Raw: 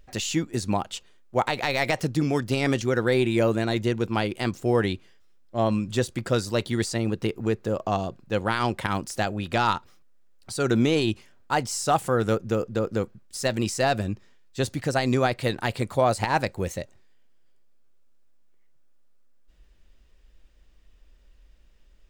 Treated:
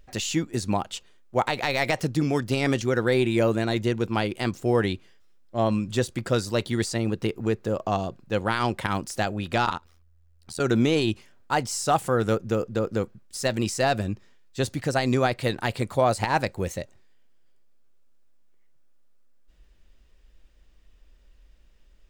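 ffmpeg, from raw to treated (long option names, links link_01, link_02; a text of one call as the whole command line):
ffmpeg -i in.wav -filter_complex "[0:a]asettb=1/sr,asplit=3[link_01][link_02][link_03];[link_01]atrim=end=9.654[link_04];[link_02]atrim=start=9.65:end=10.6,asetpts=PTS-STARTPTS,afade=type=in:duration=0.004:curve=qsin,afade=type=out:start_time=0.946:duration=0.004:curve=qsin,tremolo=f=82:d=0.974[link_05];[link_03]atrim=start=10.596[link_06];[link_04][link_05]acrossfade=duration=0.004:curve1=hsin:curve2=qsin[link_07];[link_07][link_06]acrossfade=duration=0.004:curve1=qsin:curve2=hsin" out.wav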